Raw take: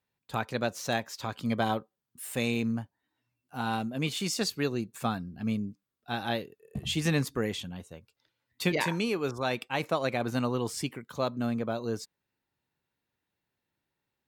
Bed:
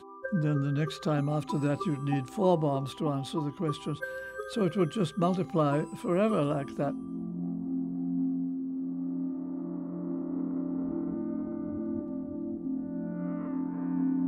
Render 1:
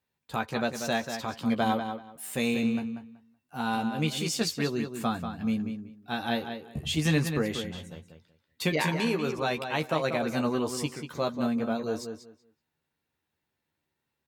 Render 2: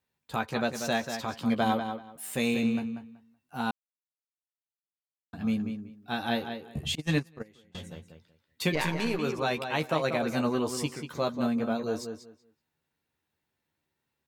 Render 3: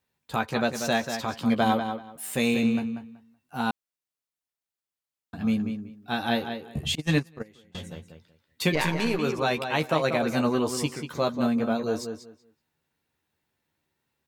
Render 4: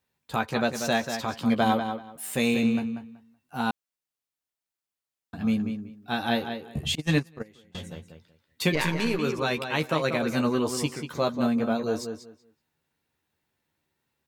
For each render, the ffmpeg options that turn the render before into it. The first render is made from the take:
-filter_complex "[0:a]asplit=2[a][b];[b]adelay=13,volume=-6dB[c];[a][c]amix=inputs=2:normalize=0,asplit=2[d][e];[e]adelay=189,lowpass=f=4.7k:p=1,volume=-7.5dB,asplit=2[f][g];[g]adelay=189,lowpass=f=4.7k:p=1,volume=0.2,asplit=2[h][i];[i]adelay=189,lowpass=f=4.7k:p=1,volume=0.2[j];[d][f][h][j]amix=inputs=4:normalize=0"
-filter_complex "[0:a]asettb=1/sr,asplit=3[a][b][c];[a]atrim=end=6.954[d];[b]atrim=start=6.95:end=7.75,asetpts=PTS-STARTPTS,afade=t=in:d=0.004:c=qsin,afade=t=out:st=0.796:d=0.004:c=qsin,agate=range=-26dB:threshold=-24dB:ratio=16:release=100:detection=peak[e];[c]atrim=start=7.746[f];[d][e]acrossfade=d=0.004:c1=hsin:c2=qsin[g];[g][f]acrossfade=d=0.004:c1=qsin:c2=hsin,asettb=1/sr,asplit=3[h][i][j];[h]atrim=end=8.744[k];[i]atrim=start=8.74:end=9.19,asetpts=PTS-STARTPTS,afade=t=in:d=0.004:c=qsin,afade=t=out:st=0.446:d=0.004:c=qsin,aeval=exprs='if(lt(val(0),0),0.447*val(0),val(0))':c=same[l];[j]atrim=start=9.186[m];[k][l]acrossfade=d=0.004:c1=hsin:c2=qsin[n];[n][m]acrossfade=d=0.004:c1=qsin:c2=hsin,asplit=3[o][p][q];[o]atrim=end=3.71,asetpts=PTS-STARTPTS,afade=t=out:st=3.706:d=0.004:c=hsin[r];[p]atrim=start=3.71:end=5.33,asetpts=PTS-STARTPTS,volume=0[s];[q]atrim=start=5.33,asetpts=PTS-STARTPTS,afade=t=in:d=0.004:c=hsin[t];[r][s][t]concat=n=3:v=0:a=1"
-af "volume=3.5dB"
-filter_complex "[0:a]asettb=1/sr,asplit=3[a][b][c];[a]atrim=end=8.754[d];[b]atrim=start=8.75:end=10.65,asetpts=PTS-STARTPTS,afade=t=in:d=0.004:c=qsin,afade=t=out:st=1.896:d=0.004:c=qsin,equalizer=f=730:t=o:w=0.51:g=-6[e];[c]atrim=start=10.646[f];[d][e]acrossfade=d=0.004:c1=hsin:c2=qsin[g];[g][f]acrossfade=d=0.004:c1=qsin:c2=hsin"

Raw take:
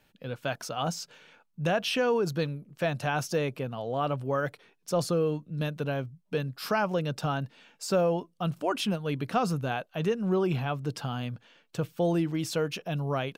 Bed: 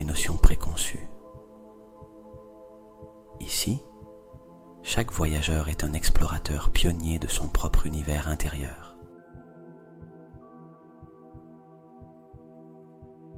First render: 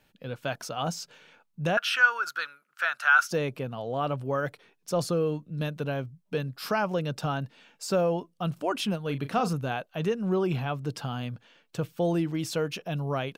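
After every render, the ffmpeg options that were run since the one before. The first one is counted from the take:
-filter_complex "[0:a]asettb=1/sr,asplit=3[a][b][c];[a]atrim=end=1.774[d];[b]atrim=start=1.77:end=3.31,asetpts=PTS-STARTPTS,afade=t=in:d=0.004:c=qsin,afade=t=out:st=1.536:d=0.004:c=qsin,highpass=f=1.4k:t=q:w=11[e];[c]atrim=start=3.306[f];[d][e]acrossfade=d=0.004:c1=hsin:c2=qsin[g];[g][f]acrossfade=d=0.004:c1=qsin:c2=hsin,asettb=1/sr,asplit=3[h][i][j];[h]atrim=end=9.034[k];[i]atrim=start=9.03:end=9.53,asetpts=PTS-STARTPTS,afade=t=in:d=0.004:c=qsin,afade=t=out:st=0.496:d=0.004:c=qsin,asplit=2[l][m];[m]adelay=36,volume=-11dB[n];[l][n]amix=inputs=2:normalize=0,atrim=end_sample=22050[o];[j]atrim=start=9.526[p];[k][o]acrossfade=d=0.004:c1=hsin:c2=qsin[q];[q][p]acrossfade=d=0.004:c1=qsin:c2=hsin"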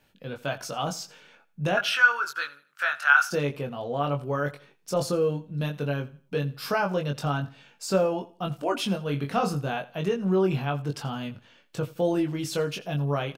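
-filter_complex "[0:a]asplit=2[a][b];[b]adelay=21,volume=-4dB[c];[a][c]amix=inputs=2:normalize=0,aecho=1:1:84|168|252:0.106|0.0328|0.0102"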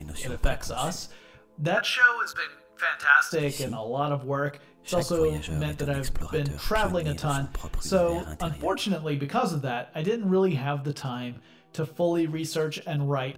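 -filter_complex "[1:a]volume=-9dB[a];[0:a][a]amix=inputs=2:normalize=0"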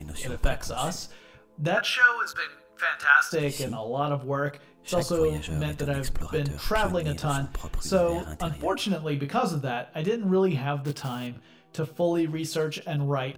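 -filter_complex "[0:a]asettb=1/sr,asplit=3[a][b][c];[a]atrim=end=10.854[d];[b]atrim=start=10.85:end=11.27,asetpts=PTS-STARTPTS,afade=t=in:d=0.004:c=qsin,afade=t=out:st=0.416:d=0.004:c=qsin,acrusher=bits=4:mode=log:mix=0:aa=0.000001[e];[c]atrim=start=11.266[f];[d][e]acrossfade=d=0.004:c1=hsin:c2=qsin[g];[g][f]acrossfade=d=0.004:c1=qsin:c2=hsin"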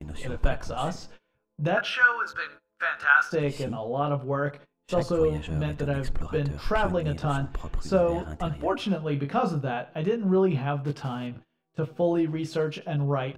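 -af "aemphasis=mode=reproduction:type=75fm,agate=range=-22dB:threshold=-44dB:ratio=16:detection=peak"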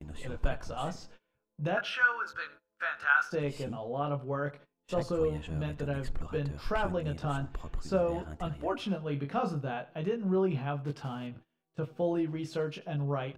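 -af "volume=-6dB"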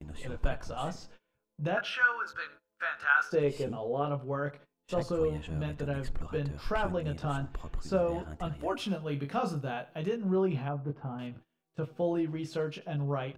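-filter_complex "[0:a]asettb=1/sr,asplit=3[a][b][c];[a]atrim=end=3.174[d];[b]atrim=start=3.17:end=4.05,asetpts=PTS-STARTPTS,afade=t=in:d=0.004:c=qsin,afade=t=out:st=0.876:d=0.004:c=qsin,equalizer=f=420:w=2.8:g=8[e];[c]atrim=start=4.046[f];[d][e]acrossfade=d=0.004:c1=hsin:c2=qsin[g];[g][f]acrossfade=d=0.004:c1=qsin:c2=hsin,asettb=1/sr,asplit=3[h][i][j];[h]atrim=end=8.594[k];[i]atrim=start=8.59:end=10.18,asetpts=PTS-STARTPTS,afade=t=in:d=0.004:c=qsin,afade=t=out:st=1.586:d=0.004:c=qsin,aemphasis=mode=production:type=cd[l];[j]atrim=start=10.176[m];[k][l]acrossfade=d=0.004:c1=hsin:c2=qsin[n];[n][m]acrossfade=d=0.004:c1=qsin:c2=hsin,asettb=1/sr,asplit=3[o][p][q];[o]atrim=end=10.684[r];[p]atrim=start=10.68:end=11.19,asetpts=PTS-STARTPTS,afade=t=in:d=0.004:c=qsin,afade=t=out:st=0.506:d=0.004:c=qsin,lowpass=1.1k[s];[q]atrim=start=11.186[t];[r][s]acrossfade=d=0.004:c1=hsin:c2=qsin[u];[u][t]acrossfade=d=0.004:c1=qsin:c2=hsin"

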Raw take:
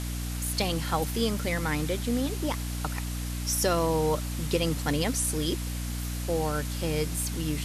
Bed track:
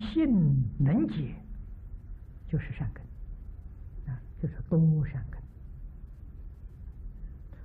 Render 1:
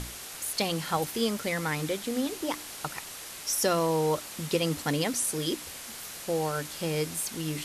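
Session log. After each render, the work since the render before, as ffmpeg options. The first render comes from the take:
-af "bandreject=f=60:t=h:w=6,bandreject=f=120:t=h:w=6,bandreject=f=180:t=h:w=6,bandreject=f=240:t=h:w=6,bandreject=f=300:t=h:w=6"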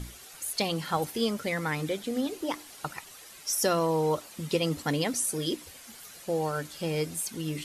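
-af "afftdn=nr=10:nf=-42"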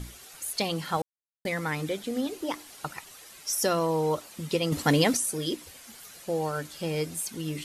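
-filter_complex "[0:a]asettb=1/sr,asplit=3[a][b][c];[a]atrim=end=4.724[d];[b]atrim=start=4.72:end=5.17,asetpts=PTS-STARTPTS,afade=t=in:d=0.004:c=qsin,afade=t=out:st=0.446:d=0.004:c=qsin,acontrast=65[e];[c]atrim=start=5.166[f];[d][e]acrossfade=d=0.004:c1=hsin:c2=qsin[g];[g][f]acrossfade=d=0.004:c1=qsin:c2=hsin,asplit=3[h][i][j];[h]atrim=end=1.02,asetpts=PTS-STARTPTS,afade=t=out:st=1.016:d=0.004:c=hsin[k];[i]atrim=start=1.02:end=1.45,asetpts=PTS-STARTPTS,volume=0[l];[j]atrim=start=1.45,asetpts=PTS-STARTPTS,afade=t=in:d=0.004:c=hsin[m];[k][l][m]concat=n=3:v=0:a=1"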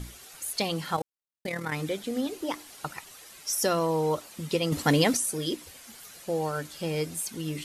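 -filter_complex "[0:a]asettb=1/sr,asplit=3[a][b][c];[a]atrim=end=0.964[d];[b]atrim=start=0.96:end=1.72,asetpts=PTS-STARTPTS,afade=t=in:d=0.004:c=qsin,afade=t=out:st=0.756:d=0.004:c=qsin,tremolo=f=38:d=0.621[e];[c]atrim=start=1.716[f];[d][e]acrossfade=d=0.004:c1=hsin:c2=qsin[g];[g][f]acrossfade=d=0.004:c1=qsin:c2=hsin"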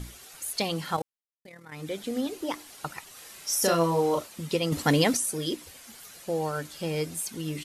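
-filter_complex "[0:a]asplit=3[a][b][c];[a]afade=t=out:st=3.15:d=0.02[d];[b]asplit=2[e][f];[f]adelay=36,volume=-2dB[g];[e][g]amix=inputs=2:normalize=0,afade=t=in:st=3.15:d=0.02,afade=t=out:st=4.26:d=0.02[h];[c]afade=t=in:st=4.26:d=0.02[i];[d][h][i]amix=inputs=3:normalize=0,asplit=3[j][k][l];[j]atrim=end=1.35,asetpts=PTS-STARTPTS,afade=t=out:st=1:d=0.35:silence=0.16788[m];[k]atrim=start=1.35:end=1.68,asetpts=PTS-STARTPTS,volume=-15.5dB[n];[l]atrim=start=1.68,asetpts=PTS-STARTPTS,afade=t=in:d=0.35:silence=0.16788[o];[m][n][o]concat=n=3:v=0:a=1"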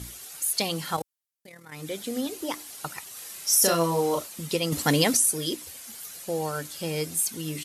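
-af "highpass=50,aemphasis=mode=production:type=cd"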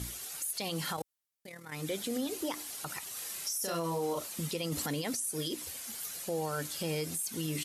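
-af "acompressor=threshold=-27dB:ratio=6,alimiter=level_in=1.5dB:limit=-24dB:level=0:latency=1:release=54,volume=-1.5dB"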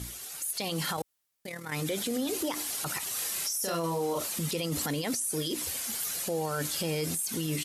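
-af "dynaudnorm=f=420:g=3:m=8dB,alimiter=limit=-23dB:level=0:latency=1:release=25"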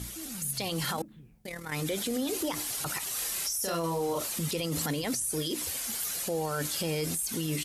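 -filter_complex "[1:a]volume=-19.5dB[a];[0:a][a]amix=inputs=2:normalize=0"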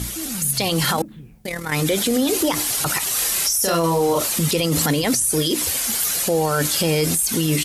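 -af "volume=12dB"

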